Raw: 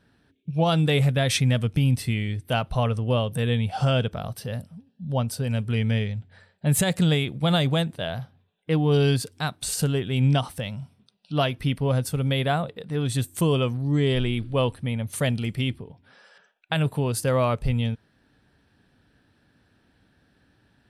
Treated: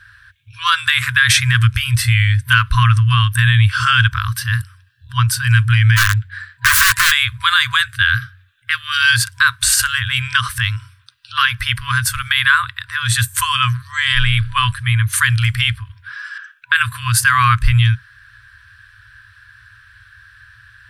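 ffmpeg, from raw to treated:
ffmpeg -i in.wav -filter_complex "[0:a]asplit=3[link_01][link_02][link_03];[link_01]afade=type=out:start_time=5.96:duration=0.02[link_04];[link_02]aeval=exprs='(mod(13.3*val(0)+1,2)-1)/13.3':channel_layout=same,afade=type=in:start_time=5.96:duration=0.02,afade=type=out:start_time=7.1:duration=0.02[link_05];[link_03]afade=type=in:start_time=7.1:duration=0.02[link_06];[link_04][link_05][link_06]amix=inputs=3:normalize=0,asettb=1/sr,asplit=3[link_07][link_08][link_09];[link_07]atrim=end=7.814[link_10];[link_08]atrim=start=7.81:end=9.02,asetpts=PTS-STARTPTS,afade=type=in:duration=0.004:curve=qsin,afade=type=out:start_time=1.206:duration=0.004:curve=qsin,asuperstop=centerf=1000:order=4:qfactor=4.1[link_11];[link_09]atrim=start=9.016[link_12];[link_10][link_11]acrossfade=duration=0.004:curve1=hsin:curve2=qsin[link_13];[link_13][link_12]acrossfade=duration=0.004:curve1=qsin:curve2=hsin,afftfilt=real='re*(1-between(b*sr/4096,120,980))':imag='im*(1-between(b*sr/4096,120,980))':win_size=4096:overlap=0.75,equalizer=frequency=1600:width_type=o:width=0.41:gain=13,alimiter=level_in=16dB:limit=-1dB:release=50:level=0:latency=1,volume=-1dB" out.wav

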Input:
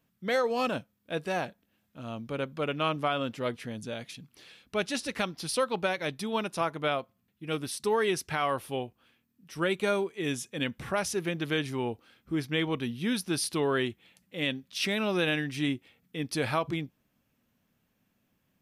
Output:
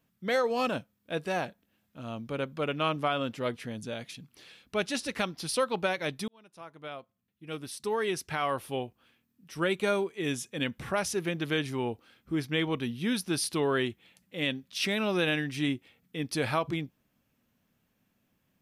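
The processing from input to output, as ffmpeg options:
ffmpeg -i in.wav -filter_complex "[0:a]asplit=2[link_01][link_02];[link_01]atrim=end=6.28,asetpts=PTS-STARTPTS,afade=type=out:start_time=6.276:duration=0.004:curve=hsin[link_03];[link_02]atrim=start=6.28,asetpts=PTS-STARTPTS,afade=type=in:duration=2.5[link_04];[link_03][link_04]concat=n=2:v=0:a=1" out.wav

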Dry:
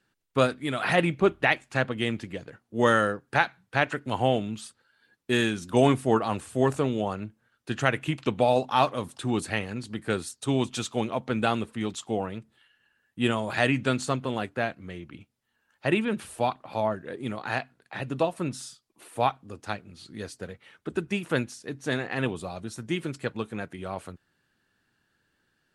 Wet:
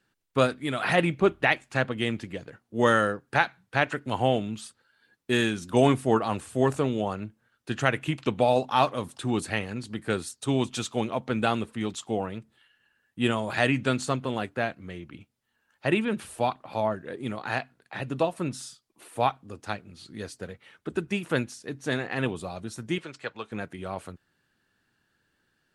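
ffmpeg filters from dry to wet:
ffmpeg -i in.wav -filter_complex "[0:a]asettb=1/sr,asplit=3[link_01][link_02][link_03];[link_01]atrim=end=22.984[link_04];[link_02]atrim=start=22.98:end=23.52,asetpts=PTS-STARTPTS,afade=type=in:duration=0.004:curve=qsin,afade=type=out:start_time=0.536:duration=0.004:curve=qsin,acrossover=split=510 7300:gain=0.224 1 0.0891[link_05][link_06][link_07];[link_05][link_06][link_07]amix=inputs=3:normalize=0[link_08];[link_03]atrim=start=23.516[link_09];[link_04][link_08]acrossfade=duration=0.004:curve1=hsin:curve2=qsin[link_10];[link_10][link_09]acrossfade=duration=0.004:curve1=qsin:curve2=hsin" out.wav

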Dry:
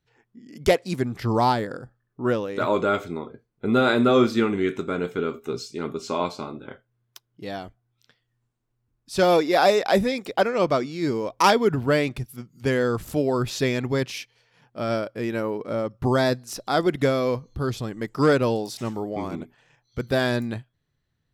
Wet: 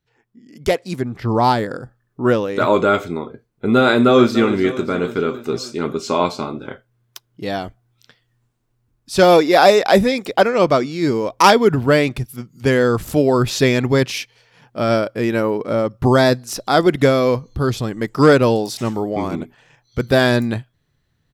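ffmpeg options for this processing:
ffmpeg -i in.wav -filter_complex "[0:a]asplit=3[link_01][link_02][link_03];[link_01]afade=type=out:start_time=1:duration=0.02[link_04];[link_02]highshelf=frequency=4200:gain=-11.5,afade=type=in:start_time=1:duration=0.02,afade=type=out:start_time=1.43:duration=0.02[link_05];[link_03]afade=type=in:start_time=1.43:duration=0.02[link_06];[link_04][link_05][link_06]amix=inputs=3:normalize=0,asplit=2[link_07][link_08];[link_08]afade=type=in:start_time=3.89:duration=0.01,afade=type=out:start_time=4.42:duration=0.01,aecho=0:1:290|580|870|1160|1450|1740|2030|2320:0.211349|0.137377|0.0892949|0.0580417|0.0377271|0.0245226|0.0159397|0.0103608[link_09];[link_07][link_09]amix=inputs=2:normalize=0,dynaudnorm=framelen=530:gausssize=5:maxgain=11.5dB" out.wav

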